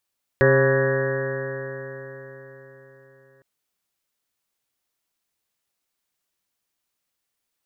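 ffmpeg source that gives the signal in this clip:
ffmpeg -f lavfi -i "aevalsrc='0.112*pow(10,-3*t/4.32)*sin(2*PI*132.18*t)+0.0422*pow(10,-3*t/4.32)*sin(2*PI*265.42*t)+0.141*pow(10,-3*t/4.32)*sin(2*PI*400.78*t)+0.15*pow(10,-3*t/4.32)*sin(2*PI*539.28*t)+0.0168*pow(10,-3*t/4.32)*sin(2*PI*681.91*t)+0.0133*pow(10,-3*t/4.32)*sin(2*PI*829.6*t)+0.0224*pow(10,-3*t/4.32)*sin(2*PI*983.22*t)+0.0282*pow(10,-3*t/4.32)*sin(2*PI*1143.6*t)+0.015*pow(10,-3*t/4.32)*sin(2*PI*1311.49*t)+0.0355*pow(10,-3*t/4.32)*sin(2*PI*1487.56*t)+0.0794*pow(10,-3*t/4.32)*sin(2*PI*1672.45*t)+0.0562*pow(10,-3*t/4.32)*sin(2*PI*1866.7*t)':duration=3.01:sample_rate=44100" out.wav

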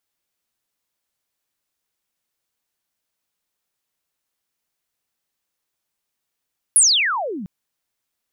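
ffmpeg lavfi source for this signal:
ffmpeg -f lavfi -i "aevalsrc='pow(10,(-8.5-19.5*t/0.7)/20)*sin(2*PI*11000*0.7/log(170/11000)*(exp(log(170/11000)*t/0.7)-1))':duration=0.7:sample_rate=44100" out.wav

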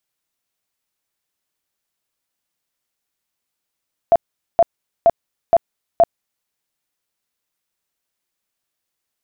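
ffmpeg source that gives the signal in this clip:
ffmpeg -f lavfi -i "aevalsrc='0.447*sin(2*PI*676*mod(t,0.47))*lt(mod(t,0.47),25/676)':duration=2.35:sample_rate=44100" out.wav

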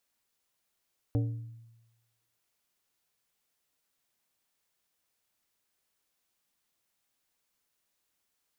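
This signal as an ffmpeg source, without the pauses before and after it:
ffmpeg -f lavfi -i "aevalsrc='0.0668*pow(10,-3*t/1.06)*sin(2*PI*115*t)+0.0335*pow(10,-3*t/0.558)*sin(2*PI*287.5*t)+0.0168*pow(10,-3*t/0.402)*sin(2*PI*460*t)+0.00841*pow(10,-3*t/0.344)*sin(2*PI*575*t)+0.00422*pow(10,-3*t/0.286)*sin(2*PI*747.5*t)':duration=1.23:sample_rate=44100" out.wav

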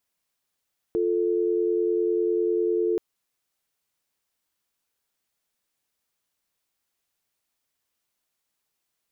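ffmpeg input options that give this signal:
ffmpeg -f lavfi -i "aevalsrc='0.0668*(sin(2*PI*350*t)+sin(2*PI*440*t))':duration=2.03:sample_rate=44100" out.wav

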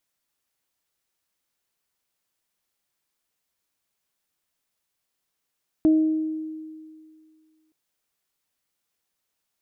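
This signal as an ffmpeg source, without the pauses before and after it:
ffmpeg -f lavfi -i "aevalsrc='0.224*pow(10,-3*t/2.12)*sin(2*PI*314*t)+0.0316*pow(10,-3*t/0.89)*sin(2*PI*628*t)':duration=1.87:sample_rate=44100" out.wav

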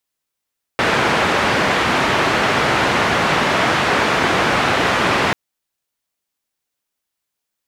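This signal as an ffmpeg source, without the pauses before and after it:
ffmpeg -f lavfi -i "anoisesrc=color=white:duration=4.54:sample_rate=44100:seed=1,highpass=frequency=91,lowpass=frequency=1800,volume=-1dB" out.wav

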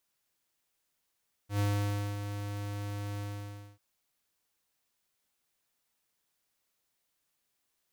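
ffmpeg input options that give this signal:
ffmpeg -f lavfi -i "aevalsrc='0.0398*(2*lt(mod(102*t,1),0.5)-1)':duration=2.293:sample_rate=44100,afade=type=in:duration=0.103,afade=type=out:start_time=0.103:duration=0.568:silence=0.355,afade=type=out:start_time=1.71:duration=0.583" out.wav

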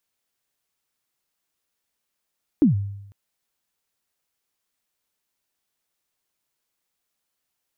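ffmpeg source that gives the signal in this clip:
ffmpeg -f lavfi -i "aevalsrc='0.316*pow(10,-3*t/0.85)*sin(2*PI*(330*0.127/log(100/330)*(exp(log(100/330)*min(t,0.127)/0.127)-1)+100*max(t-0.127,0)))':duration=0.5:sample_rate=44100" out.wav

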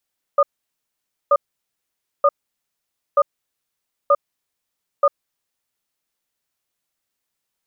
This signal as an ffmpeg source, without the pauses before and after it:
ffmpeg -f lavfi -i "aevalsrc='0.224*(sin(2*PI*571*t)+sin(2*PI*1220*t))*clip(min(mod(t,0.93),0.05-mod(t,0.93))/0.005,0,1)':duration=4.97:sample_rate=44100" out.wav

